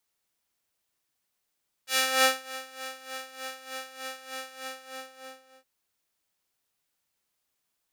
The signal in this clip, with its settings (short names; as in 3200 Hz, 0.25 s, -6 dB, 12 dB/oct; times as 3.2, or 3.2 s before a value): synth patch with tremolo C5, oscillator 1 triangle, interval -12 st, detune 20 cents, oscillator 2 level -12 dB, sub -3 dB, filter highpass, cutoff 710 Hz, Q 0.7, filter envelope 2 oct, attack 0.181 s, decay 0.38 s, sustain -21.5 dB, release 1.10 s, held 2.67 s, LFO 3.3 Hz, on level 13.5 dB